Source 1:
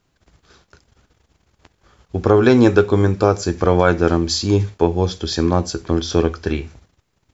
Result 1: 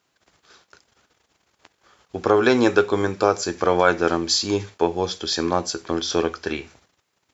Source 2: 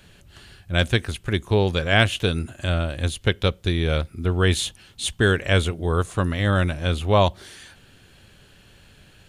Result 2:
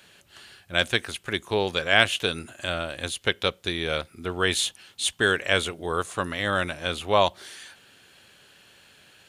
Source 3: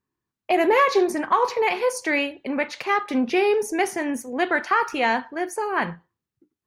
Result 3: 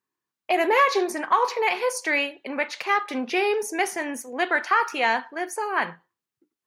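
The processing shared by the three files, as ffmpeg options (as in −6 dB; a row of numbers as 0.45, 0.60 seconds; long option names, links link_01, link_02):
-af "highpass=frequency=610:poles=1,volume=1dB"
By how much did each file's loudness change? −4.0, −3.0, −1.5 LU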